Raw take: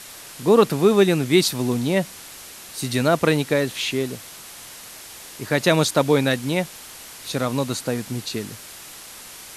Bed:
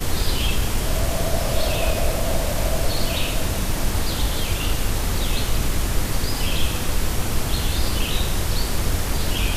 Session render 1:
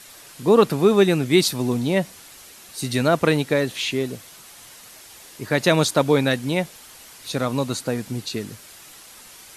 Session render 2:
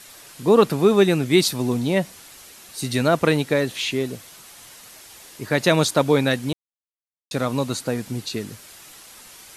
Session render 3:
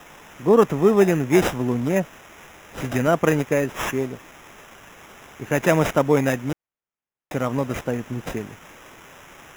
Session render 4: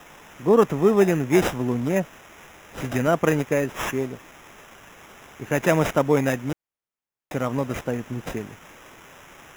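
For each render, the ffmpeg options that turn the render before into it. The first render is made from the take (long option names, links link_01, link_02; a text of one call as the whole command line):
ffmpeg -i in.wav -af "afftdn=noise_reduction=6:noise_floor=-41" out.wav
ffmpeg -i in.wav -filter_complex "[0:a]asplit=3[link_01][link_02][link_03];[link_01]atrim=end=6.53,asetpts=PTS-STARTPTS,afade=type=out:start_time=6.526:duration=0.004:curve=hsin[link_04];[link_02]atrim=start=6.53:end=7.31,asetpts=PTS-STARTPTS,volume=0[link_05];[link_03]atrim=start=7.31,asetpts=PTS-STARTPTS,afade=type=in:duration=0.004:curve=hsin[link_06];[link_04][link_05][link_06]concat=n=3:v=0:a=1" out.wav
ffmpeg -i in.wav -filter_complex "[0:a]acrossover=split=1700[link_01][link_02];[link_01]aeval=exprs='sgn(val(0))*max(abs(val(0))-0.00562,0)':channel_layout=same[link_03];[link_02]acrusher=samples=10:mix=1:aa=0.000001[link_04];[link_03][link_04]amix=inputs=2:normalize=0" out.wav
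ffmpeg -i in.wav -af "volume=-1.5dB" out.wav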